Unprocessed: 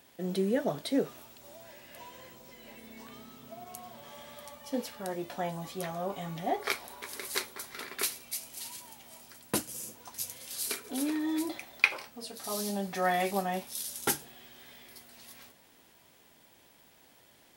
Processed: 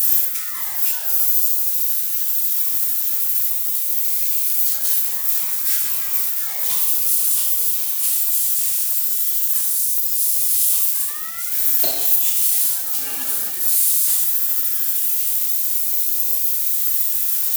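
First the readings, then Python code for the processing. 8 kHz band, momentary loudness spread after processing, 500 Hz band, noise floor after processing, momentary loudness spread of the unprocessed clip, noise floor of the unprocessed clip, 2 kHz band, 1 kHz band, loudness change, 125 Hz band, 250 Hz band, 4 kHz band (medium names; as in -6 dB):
+20.0 dB, 4 LU, no reading, -24 dBFS, 20 LU, -61 dBFS, -0.5 dB, -4.5 dB, +18.0 dB, under -10 dB, under -10 dB, +11.0 dB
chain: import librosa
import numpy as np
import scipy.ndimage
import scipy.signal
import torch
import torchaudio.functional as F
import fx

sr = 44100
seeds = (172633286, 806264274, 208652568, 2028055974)

y = x + 0.5 * 10.0 ** (-20.5 / 20.0) * np.diff(np.sign(x), prepend=np.sign(x[:1]))
y = librosa.effects.preemphasis(y, coef=0.9, zi=[0.0])
y = fx.rider(y, sr, range_db=10, speed_s=2.0)
y = fx.room_shoebox(y, sr, seeds[0], volume_m3=540.0, walls='mixed', distance_m=2.7)
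y = fx.ring_lfo(y, sr, carrier_hz=1400.0, swing_pct=30, hz=0.34)
y = y * 10.0 ** (1.5 / 20.0)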